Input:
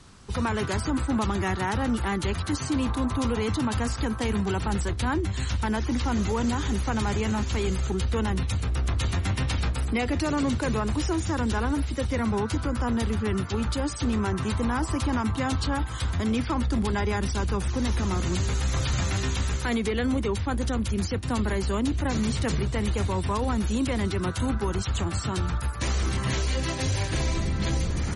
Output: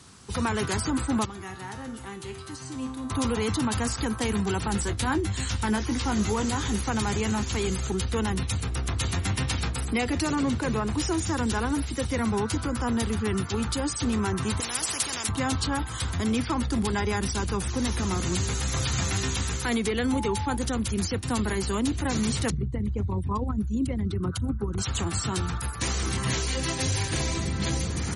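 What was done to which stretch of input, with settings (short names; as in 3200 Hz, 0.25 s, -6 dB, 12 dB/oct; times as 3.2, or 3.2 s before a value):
1.25–3.1 resonator 130 Hz, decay 0.81 s, mix 80%
4.72–6.81 doubler 19 ms -9 dB
10.35–10.98 high shelf 4500 Hz -9 dB
14.6–15.29 spectral compressor 4:1
20.11–20.55 whine 860 Hz -33 dBFS
22.5–24.78 formant sharpening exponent 2
whole clip: HPF 73 Hz; high shelf 6700 Hz +10 dB; notch 590 Hz, Q 12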